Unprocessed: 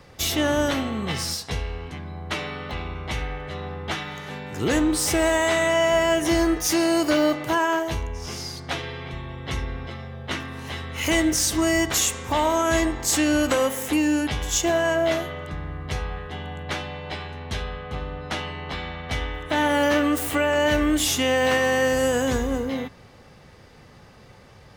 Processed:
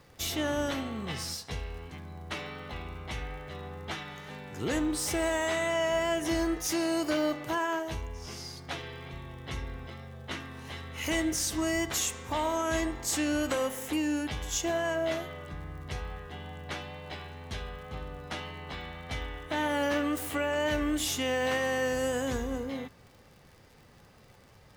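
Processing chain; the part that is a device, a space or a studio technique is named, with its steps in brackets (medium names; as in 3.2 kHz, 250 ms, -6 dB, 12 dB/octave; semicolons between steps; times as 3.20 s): vinyl LP (wow and flutter 24 cents; crackle 72 per s -38 dBFS; pink noise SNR 36 dB); trim -8.5 dB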